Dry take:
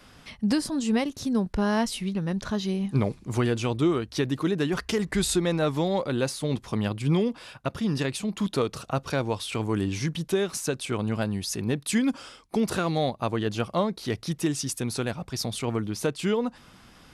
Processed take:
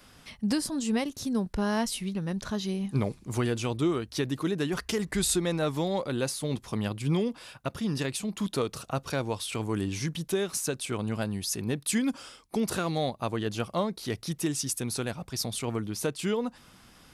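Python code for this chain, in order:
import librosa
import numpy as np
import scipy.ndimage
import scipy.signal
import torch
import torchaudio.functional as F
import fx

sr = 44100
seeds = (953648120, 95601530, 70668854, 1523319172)

y = fx.high_shelf(x, sr, hz=7500.0, db=9.0)
y = y * 10.0 ** (-3.5 / 20.0)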